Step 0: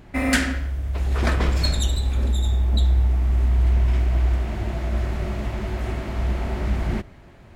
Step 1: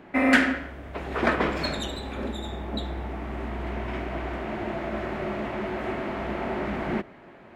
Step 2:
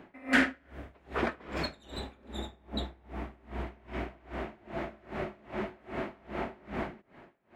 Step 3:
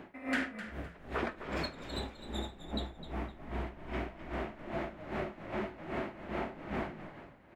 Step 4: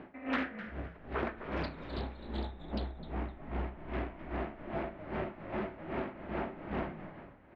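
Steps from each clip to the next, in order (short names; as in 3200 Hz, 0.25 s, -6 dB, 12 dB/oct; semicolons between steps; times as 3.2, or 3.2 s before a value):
three-band isolator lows -22 dB, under 190 Hz, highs -16 dB, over 3000 Hz; gain +3.5 dB
dB-linear tremolo 2.5 Hz, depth 27 dB; gain -2 dB
compressor 3:1, threshold -36 dBFS, peak gain reduction 12.5 dB; on a send: frequency-shifting echo 0.257 s, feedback 30%, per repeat -48 Hz, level -11.5 dB; on the sum: gain +2.5 dB
air absorption 280 m; reverb RT60 0.65 s, pre-delay 31 ms, DRR 14 dB; Doppler distortion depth 0.42 ms; gain +1 dB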